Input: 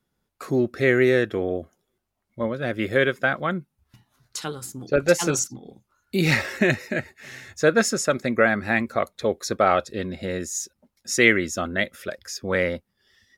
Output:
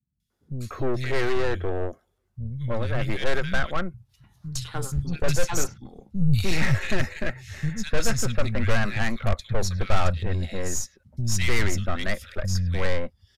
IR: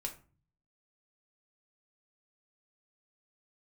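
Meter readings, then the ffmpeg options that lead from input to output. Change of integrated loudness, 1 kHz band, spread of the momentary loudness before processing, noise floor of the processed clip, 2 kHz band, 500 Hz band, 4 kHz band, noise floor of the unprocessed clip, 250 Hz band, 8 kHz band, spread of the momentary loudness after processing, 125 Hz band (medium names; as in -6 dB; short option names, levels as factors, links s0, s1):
-4.5 dB, -4.5 dB, 14 LU, -72 dBFS, -6.5 dB, -7.5 dB, -1.5 dB, -78 dBFS, -5.0 dB, -2.5 dB, 10 LU, +5.5 dB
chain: -filter_complex "[0:a]highpass=55,highshelf=f=12000:g=-6,acrossover=split=190|2600[s0][s1][s2];[s2]adelay=200[s3];[s1]adelay=300[s4];[s0][s4][s3]amix=inputs=3:normalize=0,aeval=exprs='(tanh(15.8*val(0)+0.4)-tanh(0.4))/15.8':c=same,asubboost=boost=10:cutoff=95,aresample=32000,aresample=44100,volume=1.33"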